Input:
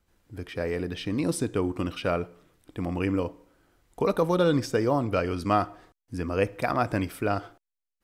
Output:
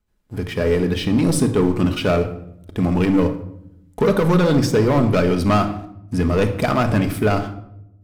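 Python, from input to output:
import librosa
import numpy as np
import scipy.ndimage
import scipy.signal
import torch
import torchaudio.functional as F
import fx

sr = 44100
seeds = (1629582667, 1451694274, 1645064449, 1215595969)

y = fx.leveller(x, sr, passes=3)
y = fx.low_shelf(y, sr, hz=240.0, db=5.5)
y = fx.room_shoebox(y, sr, seeds[0], volume_m3=2000.0, walls='furnished', distance_m=1.4)
y = y * 10.0 ** (-2.0 / 20.0)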